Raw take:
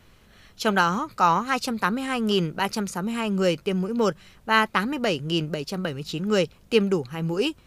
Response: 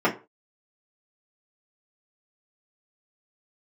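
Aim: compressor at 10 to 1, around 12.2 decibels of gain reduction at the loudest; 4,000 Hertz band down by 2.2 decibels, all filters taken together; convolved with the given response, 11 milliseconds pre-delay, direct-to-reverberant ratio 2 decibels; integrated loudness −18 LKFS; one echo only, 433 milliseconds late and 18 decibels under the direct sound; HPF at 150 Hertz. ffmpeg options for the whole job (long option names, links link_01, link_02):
-filter_complex "[0:a]highpass=150,equalizer=frequency=4000:width_type=o:gain=-3.5,acompressor=threshold=-26dB:ratio=10,aecho=1:1:433:0.126,asplit=2[link_01][link_02];[1:a]atrim=start_sample=2205,adelay=11[link_03];[link_02][link_03]afir=irnorm=-1:irlink=0,volume=-18.5dB[link_04];[link_01][link_04]amix=inputs=2:normalize=0,volume=10dB"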